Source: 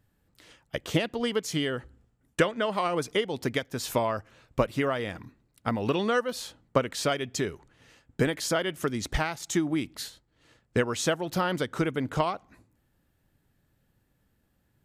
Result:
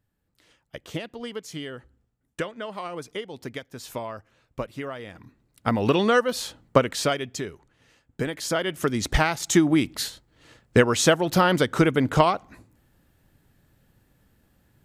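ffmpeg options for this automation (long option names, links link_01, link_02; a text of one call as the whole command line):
ffmpeg -i in.wav -af "volume=17dB,afade=type=in:start_time=5.13:duration=0.66:silence=0.237137,afade=type=out:start_time=6.8:duration=0.64:silence=0.354813,afade=type=in:start_time=8.24:duration=1.15:silence=0.281838" out.wav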